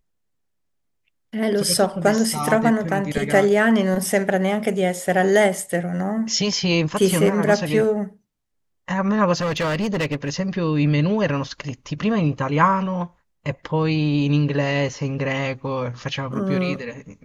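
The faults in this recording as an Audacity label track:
9.350000	10.340000	clipped -19 dBFS

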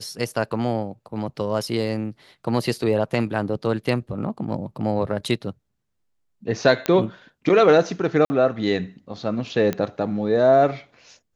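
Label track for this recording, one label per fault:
6.860000	6.860000	pop -8 dBFS
8.250000	8.300000	dropout 50 ms
9.730000	9.730000	pop -12 dBFS

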